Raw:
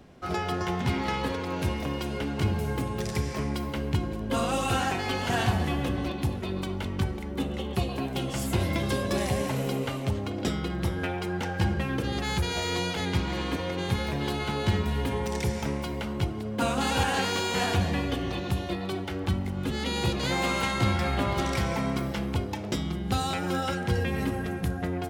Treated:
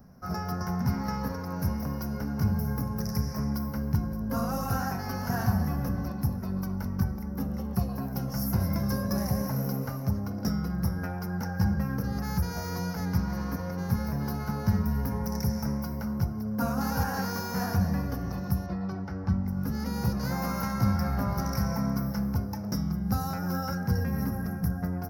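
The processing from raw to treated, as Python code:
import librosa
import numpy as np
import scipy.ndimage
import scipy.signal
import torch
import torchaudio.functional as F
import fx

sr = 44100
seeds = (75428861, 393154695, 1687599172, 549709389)

y = fx.lowpass(x, sr, hz=4400.0, slope=12, at=(18.66, 19.48))
y = fx.curve_eq(y, sr, hz=(110.0, 210.0, 340.0, 490.0, 710.0, 1500.0, 3400.0, 5500.0, 8000.0, 12000.0), db=(0, 4, -13, -6, -5, -3, -29, 5, -23, 10))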